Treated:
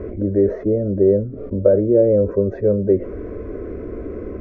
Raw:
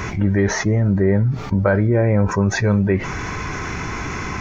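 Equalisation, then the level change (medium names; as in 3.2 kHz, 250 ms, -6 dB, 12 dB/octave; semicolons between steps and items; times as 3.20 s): resonant low-pass 550 Hz, resonance Q 3.6; static phaser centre 350 Hz, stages 4; 0.0 dB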